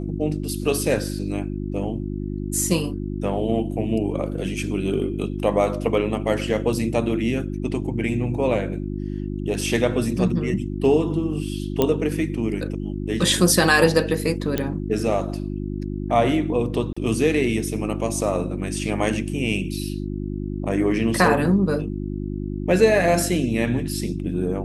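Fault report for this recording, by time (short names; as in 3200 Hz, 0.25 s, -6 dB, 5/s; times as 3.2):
hum 50 Hz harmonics 7 -28 dBFS
9.61 gap 3.1 ms
11.82 pop -6 dBFS
14.58 pop -8 dBFS
16.93–16.96 gap 35 ms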